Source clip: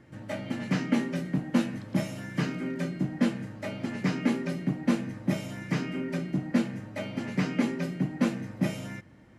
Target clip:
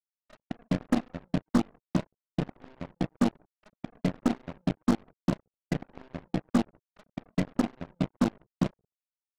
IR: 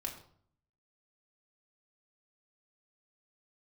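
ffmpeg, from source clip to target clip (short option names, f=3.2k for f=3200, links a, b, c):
-af "afftfilt=real='re*gte(hypot(re,im),0.112)':imag='im*gte(hypot(re,im),0.112)':win_size=1024:overlap=0.75,acrusher=bits=5:mix=0:aa=0.5,aeval=exprs='0.224*(cos(1*acos(clip(val(0)/0.224,-1,1)))-cos(1*PI/2))+0.0224*(cos(2*acos(clip(val(0)/0.224,-1,1)))-cos(2*PI/2))+0.02*(cos(5*acos(clip(val(0)/0.224,-1,1)))-cos(5*PI/2))+0.00355*(cos(6*acos(clip(val(0)/0.224,-1,1)))-cos(6*PI/2))+0.0501*(cos(7*acos(clip(val(0)/0.224,-1,1)))-cos(7*PI/2))':c=same"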